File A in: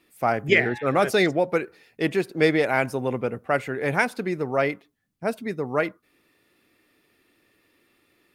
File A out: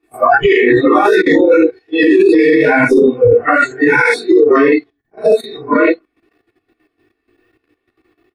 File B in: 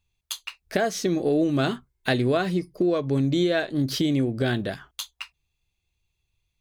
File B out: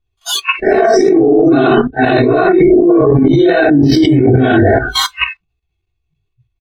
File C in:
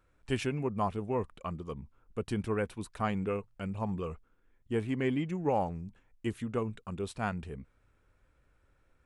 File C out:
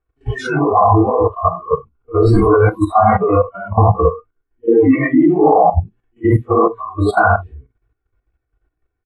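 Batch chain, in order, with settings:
phase scrambler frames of 0.2 s; chorus 2.5 Hz, delay 15.5 ms, depth 6 ms; comb 2.7 ms, depth 92%; level quantiser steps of 13 dB; spectral noise reduction 29 dB; negative-ratio compressor -36 dBFS, ratio -1; LPF 1300 Hz 6 dB/oct; limiter -33.5 dBFS; normalise peaks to -1.5 dBFS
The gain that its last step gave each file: +32.0, +32.0, +32.0 dB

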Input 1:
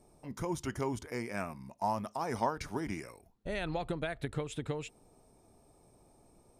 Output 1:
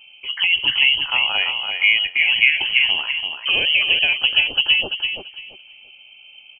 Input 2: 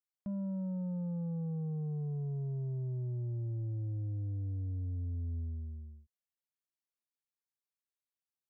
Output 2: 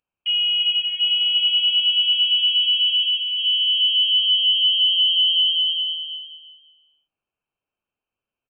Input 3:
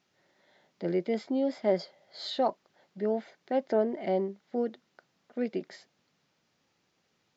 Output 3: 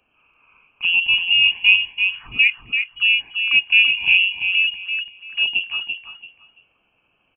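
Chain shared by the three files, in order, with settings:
notches 60/120/180/240/300/360 Hz; envelope phaser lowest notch 190 Hz, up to 1800 Hz, full sweep at -33.5 dBFS; inverted band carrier 3100 Hz; on a send: feedback echo 0.338 s, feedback 22%, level -6 dB; on the sum: match loudness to -16 LUFS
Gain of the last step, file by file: +19.0, +17.0, +13.0 dB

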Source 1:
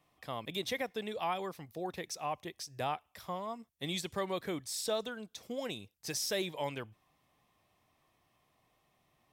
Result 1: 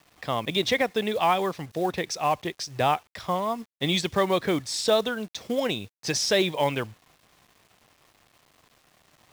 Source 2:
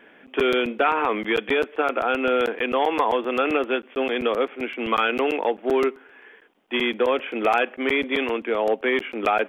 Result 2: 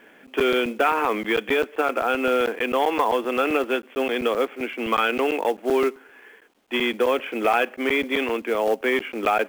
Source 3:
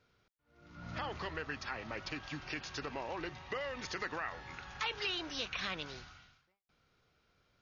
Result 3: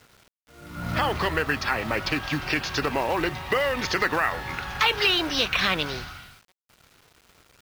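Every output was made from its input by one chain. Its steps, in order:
LPF 5900 Hz 12 dB/oct; companded quantiser 6-bit; normalise peaks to -9 dBFS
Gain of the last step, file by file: +12.5, 0.0, +15.5 dB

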